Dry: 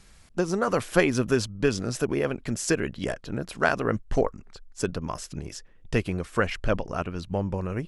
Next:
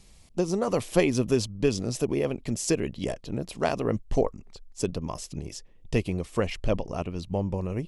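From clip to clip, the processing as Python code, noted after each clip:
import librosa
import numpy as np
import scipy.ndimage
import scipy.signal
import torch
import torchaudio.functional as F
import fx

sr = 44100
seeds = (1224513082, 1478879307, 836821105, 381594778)

y = fx.peak_eq(x, sr, hz=1500.0, db=-14.0, octaves=0.62)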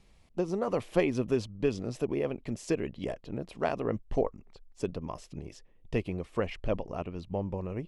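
y = fx.bass_treble(x, sr, bass_db=-3, treble_db=-13)
y = y * 10.0 ** (-3.5 / 20.0)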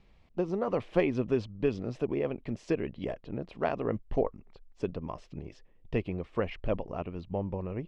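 y = scipy.signal.sosfilt(scipy.signal.butter(2, 3500.0, 'lowpass', fs=sr, output='sos'), x)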